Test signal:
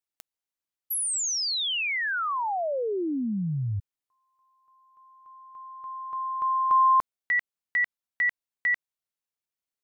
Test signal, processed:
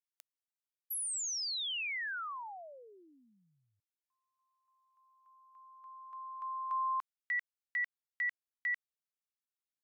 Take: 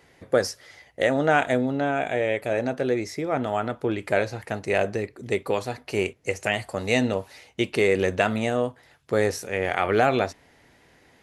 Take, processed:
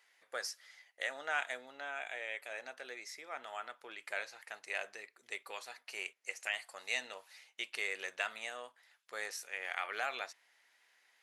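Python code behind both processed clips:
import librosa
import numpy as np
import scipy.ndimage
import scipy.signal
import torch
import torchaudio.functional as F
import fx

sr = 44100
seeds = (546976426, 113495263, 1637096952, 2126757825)

y = scipy.signal.sosfilt(scipy.signal.butter(2, 1300.0, 'highpass', fs=sr, output='sos'), x)
y = y * librosa.db_to_amplitude(-9.0)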